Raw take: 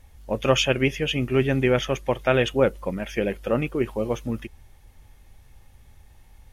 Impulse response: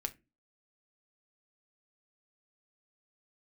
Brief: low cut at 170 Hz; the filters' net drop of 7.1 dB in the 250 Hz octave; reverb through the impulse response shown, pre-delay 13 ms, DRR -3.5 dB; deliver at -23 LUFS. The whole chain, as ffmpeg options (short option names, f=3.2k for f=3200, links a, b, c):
-filter_complex "[0:a]highpass=170,equalizer=f=250:t=o:g=-8,asplit=2[a][b];[1:a]atrim=start_sample=2205,adelay=13[c];[b][c]afir=irnorm=-1:irlink=0,volume=3.5dB[d];[a][d]amix=inputs=2:normalize=0,volume=-2.5dB"